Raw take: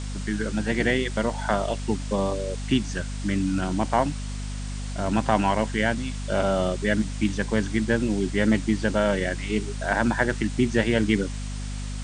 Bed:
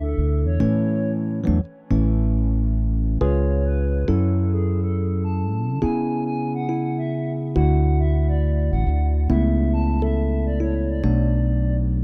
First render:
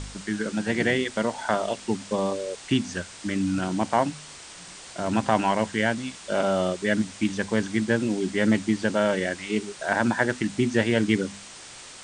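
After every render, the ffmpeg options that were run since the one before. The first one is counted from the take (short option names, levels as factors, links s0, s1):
-af "bandreject=f=50:t=h:w=4,bandreject=f=100:t=h:w=4,bandreject=f=150:t=h:w=4,bandreject=f=200:t=h:w=4,bandreject=f=250:t=h:w=4"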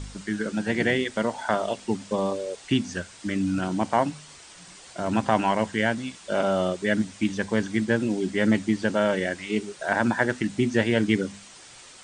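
-af "afftdn=nr=6:nf=-44"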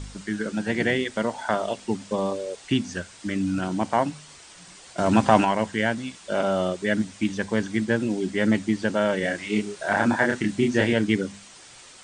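-filter_complex "[0:a]asettb=1/sr,asplit=3[s0][s1][s2];[s0]atrim=end=4.984[s3];[s1]atrim=start=4.98:end=5.45,asetpts=PTS-STARTPTS,afade=t=in:d=0.004:c=qsin,afade=t=out:st=0.466:d=0.004:c=qsin,acontrast=50[s4];[s2]atrim=start=5.446[s5];[s3][s4]acrossfade=d=0.004:c1=hsin:c2=qsin[s6];[s6][s5]acrossfade=d=0.004:c1=qsin:c2=hsin,asettb=1/sr,asplit=3[s7][s8][s9];[s7]atrim=end=9.204[s10];[s8]atrim=start=9.2:end=10.93,asetpts=PTS-STARTPTS,afade=t=in:d=0.004:c=qsin,afade=t=out:st=1.726:d=0.004:c=qsin,asplit=2[s11][s12];[s12]adelay=29,volume=0.75[s13];[s11][s13]amix=inputs=2:normalize=0,atrim=end_sample=76293[s14];[s9]atrim=start=10.926[s15];[s10][s14]acrossfade=d=0.004:c1=hsin:c2=qsin[s16];[s16][s15]acrossfade=d=0.004:c1=qsin:c2=hsin"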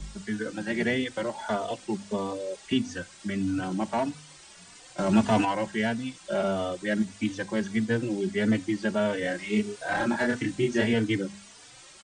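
-filter_complex "[0:a]acrossover=split=170|560|2400[s0][s1][s2][s3];[s2]asoftclip=type=tanh:threshold=0.075[s4];[s0][s1][s4][s3]amix=inputs=4:normalize=0,asplit=2[s5][s6];[s6]adelay=3.3,afreqshift=1.6[s7];[s5][s7]amix=inputs=2:normalize=1"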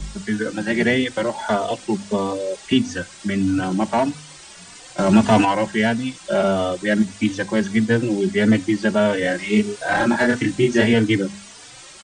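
-af "volume=2.66,alimiter=limit=0.708:level=0:latency=1"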